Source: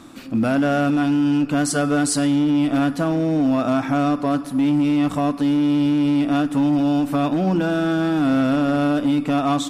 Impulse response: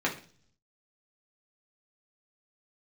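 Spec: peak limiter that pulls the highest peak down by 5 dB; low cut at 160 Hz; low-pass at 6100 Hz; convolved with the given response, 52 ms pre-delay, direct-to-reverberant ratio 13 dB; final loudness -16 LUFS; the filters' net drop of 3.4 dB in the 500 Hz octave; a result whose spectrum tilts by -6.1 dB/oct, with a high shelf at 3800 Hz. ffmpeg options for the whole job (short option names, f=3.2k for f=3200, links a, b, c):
-filter_complex "[0:a]highpass=160,lowpass=6.1k,equalizer=f=500:t=o:g=-4.5,highshelf=f=3.8k:g=-7.5,alimiter=limit=-15.5dB:level=0:latency=1,asplit=2[a][b];[1:a]atrim=start_sample=2205,adelay=52[c];[b][c]afir=irnorm=-1:irlink=0,volume=-23dB[d];[a][d]amix=inputs=2:normalize=0,volume=6dB"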